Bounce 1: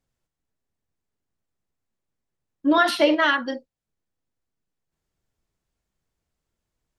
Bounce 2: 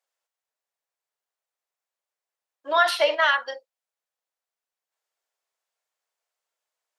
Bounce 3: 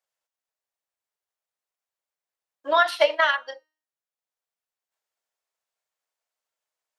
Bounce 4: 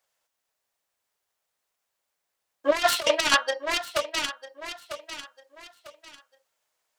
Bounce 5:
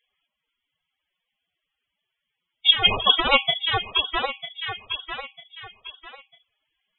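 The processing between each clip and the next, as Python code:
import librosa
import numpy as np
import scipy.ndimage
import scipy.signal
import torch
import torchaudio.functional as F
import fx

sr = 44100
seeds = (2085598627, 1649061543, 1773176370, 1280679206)

y1 = scipy.signal.sosfilt(scipy.signal.cheby2(4, 50, 210.0, 'highpass', fs=sr, output='sos'), x)
y2 = fx.transient(y1, sr, attack_db=7, sustain_db=-4)
y2 = fx.comb_fb(y2, sr, f0_hz=310.0, decay_s=0.48, harmonics='all', damping=0.0, mix_pct=40)
y2 = F.gain(torch.from_numpy(y2), 1.5).numpy()
y3 = fx.self_delay(y2, sr, depth_ms=0.4)
y3 = fx.echo_feedback(y3, sr, ms=948, feedback_pct=31, wet_db=-16.0)
y3 = fx.over_compress(y3, sr, threshold_db=-26.0, ratio=-0.5)
y3 = F.gain(torch.from_numpy(y3), 5.5).numpy()
y4 = fx.freq_invert(y3, sr, carrier_hz=3900)
y4 = fx.dynamic_eq(y4, sr, hz=2100.0, q=0.98, threshold_db=-34.0, ratio=4.0, max_db=-6)
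y4 = fx.spec_topn(y4, sr, count=32)
y4 = F.gain(torch.from_numpy(y4), 8.0).numpy()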